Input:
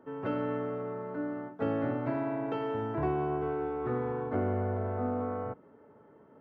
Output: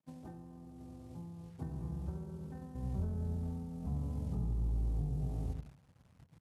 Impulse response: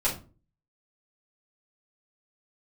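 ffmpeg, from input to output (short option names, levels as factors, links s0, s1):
-filter_complex "[0:a]acrusher=bits=8:mix=0:aa=0.000001,equalizer=f=280:t=o:w=0.85:g=2.5,asplit=2[s0][s1];[s1]adelay=82,lowpass=f=1100:p=1,volume=0.376,asplit=2[s2][s3];[s3]adelay=82,lowpass=f=1100:p=1,volume=0.28,asplit=2[s4][s5];[s5]adelay=82,lowpass=f=1100:p=1,volume=0.28[s6];[s0][s2][s4][s6]amix=inputs=4:normalize=0,acompressor=threshold=0.00891:ratio=16,asubboost=boost=11:cutoff=170,agate=range=0.0224:threshold=0.0141:ratio=3:detection=peak,asetrate=25476,aresample=44100,atempo=1.73107,highpass=76,volume=1.41"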